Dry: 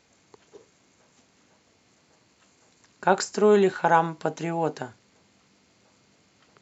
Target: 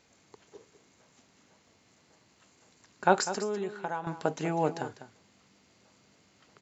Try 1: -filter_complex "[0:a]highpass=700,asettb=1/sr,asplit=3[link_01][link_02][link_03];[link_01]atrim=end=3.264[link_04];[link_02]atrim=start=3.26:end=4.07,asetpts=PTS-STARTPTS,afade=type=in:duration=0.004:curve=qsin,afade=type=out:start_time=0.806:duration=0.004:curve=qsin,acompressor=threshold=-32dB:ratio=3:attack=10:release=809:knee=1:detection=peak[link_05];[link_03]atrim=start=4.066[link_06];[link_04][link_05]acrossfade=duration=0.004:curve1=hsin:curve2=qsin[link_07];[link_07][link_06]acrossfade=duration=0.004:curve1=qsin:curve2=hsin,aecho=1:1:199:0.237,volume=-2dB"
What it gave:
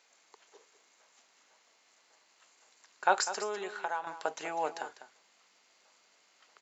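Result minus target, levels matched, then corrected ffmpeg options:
500 Hz band −2.5 dB
-filter_complex "[0:a]asettb=1/sr,asplit=3[link_01][link_02][link_03];[link_01]atrim=end=3.264[link_04];[link_02]atrim=start=3.26:end=4.07,asetpts=PTS-STARTPTS,afade=type=in:duration=0.004:curve=qsin,afade=type=out:start_time=0.806:duration=0.004:curve=qsin,acompressor=threshold=-32dB:ratio=3:attack=10:release=809:knee=1:detection=peak[link_05];[link_03]atrim=start=4.066[link_06];[link_04][link_05]acrossfade=duration=0.004:curve1=hsin:curve2=qsin[link_07];[link_07][link_06]acrossfade=duration=0.004:curve1=qsin:curve2=hsin,aecho=1:1:199:0.237,volume=-2dB"

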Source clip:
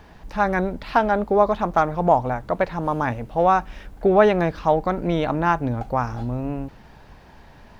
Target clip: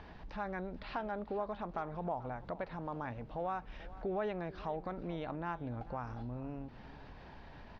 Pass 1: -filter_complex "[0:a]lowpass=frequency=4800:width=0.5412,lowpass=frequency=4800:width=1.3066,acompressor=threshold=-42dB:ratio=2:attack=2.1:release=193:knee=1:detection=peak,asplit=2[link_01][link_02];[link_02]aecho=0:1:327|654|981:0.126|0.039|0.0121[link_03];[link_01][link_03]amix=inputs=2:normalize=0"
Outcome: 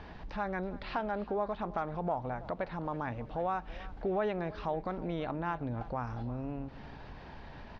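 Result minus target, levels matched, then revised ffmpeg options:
echo 111 ms early; downward compressor: peak gain reduction −4.5 dB
-filter_complex "[0:a]lowpass=frequency=4800:width=0.5412,lowpass=frequency=4800:width=1.3066,acompressor=threshold=-51dB:ratio=2:attack=2.1:release=193:knee=1:detection=peak,asplit=2[link_01][link_02];[link_02]aecho=0:1:438|876|1314:0.126|0.039|0.0121[link_03];[link_01][link_03]amix=inputs=2:normalize=0"

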